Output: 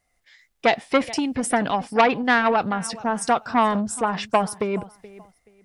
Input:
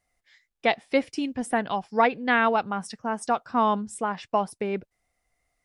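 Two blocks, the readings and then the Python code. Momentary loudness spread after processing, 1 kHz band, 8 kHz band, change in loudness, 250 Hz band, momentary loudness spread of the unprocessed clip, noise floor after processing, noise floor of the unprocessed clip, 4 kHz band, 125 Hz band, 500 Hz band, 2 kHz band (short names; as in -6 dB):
8 LU, +3.5 dB, +10.0 dB, +4.0 dB, +4.5 dB, 9 LU, -70 dBFS, -81 dBFS, +6.0 dB, +6.5 dB, +3.5 dB, +3.5 dB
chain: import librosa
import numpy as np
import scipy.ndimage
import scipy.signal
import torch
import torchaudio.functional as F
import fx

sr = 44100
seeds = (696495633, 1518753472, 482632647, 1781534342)

y = fx.transient(x, sr, attack_db=4, sustain_db=8)
y = fx.echo_feedback(y, sr, ms=427, feedback_pct=24, wet_db=-20.5)
y = fx.transformer_sat(y, sr, knee_hz=1500.0)
y = y * librosa.db_to_amplitude(3.5)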